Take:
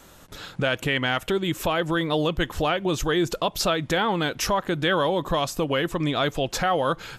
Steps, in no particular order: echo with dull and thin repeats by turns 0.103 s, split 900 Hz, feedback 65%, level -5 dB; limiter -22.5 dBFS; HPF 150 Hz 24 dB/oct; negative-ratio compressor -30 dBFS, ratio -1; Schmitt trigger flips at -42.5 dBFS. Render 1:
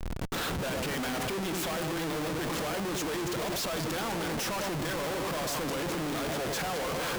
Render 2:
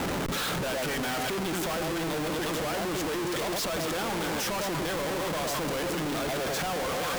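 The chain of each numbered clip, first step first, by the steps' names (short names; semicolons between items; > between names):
HPF > limiter > echo with dull and thin repeats by turns > Schmitt trigger > negative-ratio compressor; echo with dull and thin repeats by turns > negative-ratio compressor > HPF > Schmitt trigger > limiter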